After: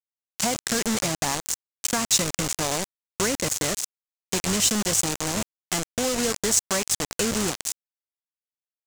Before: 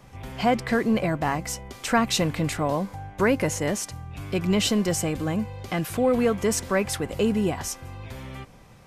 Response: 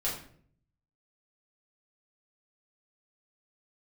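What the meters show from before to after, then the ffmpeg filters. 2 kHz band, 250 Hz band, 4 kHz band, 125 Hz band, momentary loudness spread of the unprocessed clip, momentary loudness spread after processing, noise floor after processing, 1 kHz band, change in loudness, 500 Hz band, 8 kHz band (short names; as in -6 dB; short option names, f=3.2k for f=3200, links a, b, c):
-1.0 dB, -5.0 dB, +4.5 dB, -5.5 dB, 14 LU, 9 LU, under -85 dBFS, -3.5 dB, +0.5 dB, -5.0 dB, +9.5 dB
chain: -af "acrusher=bits=3:mix=0:aa=0.000001,acompressor=threshold=-22dB:ratio=6,equalizer=f=7.1k:t=o:w=1.2:g=14,volume=-1dB"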